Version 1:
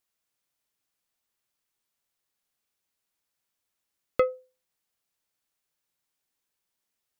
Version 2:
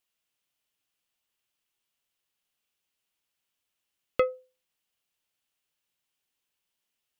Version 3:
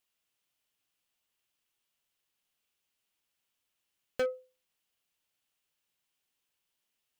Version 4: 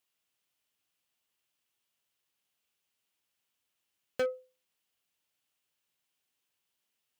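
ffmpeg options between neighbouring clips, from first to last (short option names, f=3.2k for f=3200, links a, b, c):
-af "equalizer=f=2.9k:w=2.7:g=8,volume=-1.5dB"
-af "asoftclip=type=hard:threshold=-26.5dB"
-af "highpass=62"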